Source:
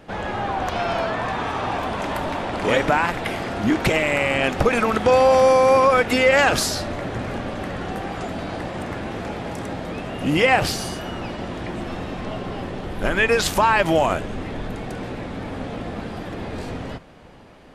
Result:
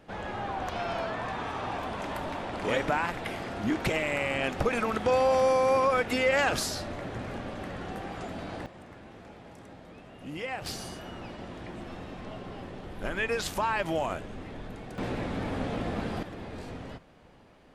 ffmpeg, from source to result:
-af "asetnsamples=n=441:p=0,asendcmd='8.66 volume volume -19dB;10.66 volume volume -11.5dB;14.98 volume volume -2dB;16.23 volume volume -10dB',volume=-9dB"

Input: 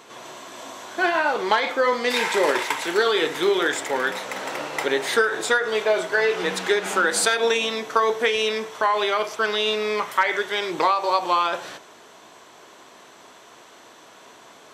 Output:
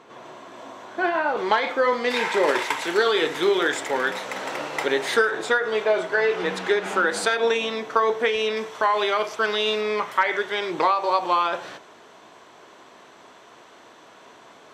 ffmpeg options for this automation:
-af "asetnsamples=n=441:p=0,asendcmd='1.37 lowpass f 3200;2.48 lowpass f 6900;5.31 lowpass f 2700;8.57 lowpass f 6200;9.81 lowpass f 3400',lowpass=f=1.4k:p=1"

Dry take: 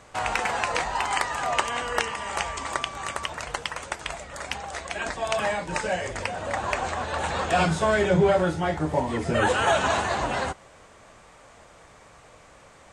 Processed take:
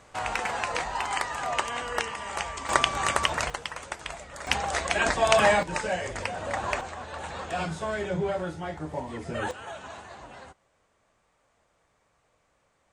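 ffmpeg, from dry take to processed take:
-af "asetnsamples=n=441:p=0,asendcmd='2.69 volume volume 6dB;3.5 volume volume -4dB;4.47 volume volume 6dB;5.63 volume volume -2dB;6.81 volume volume -9dB;9.51 volume volume -18.5dB',volume=-3.5dB"

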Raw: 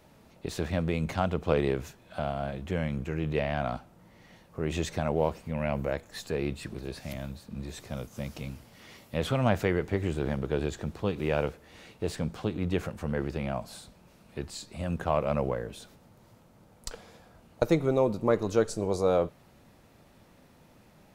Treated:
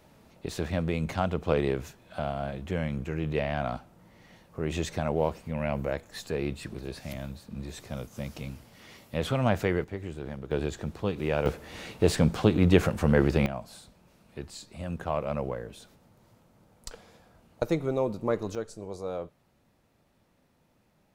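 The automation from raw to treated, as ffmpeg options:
-af "asetnsamples=n=441:p=0,asendcmd='9.84 volume volume -7.5dB;10.51 volume volume 0dB;11.46 volume volume 9dB;13.46 volume volume -3dB;18.55 volume volume -10dB',volume=0dB"

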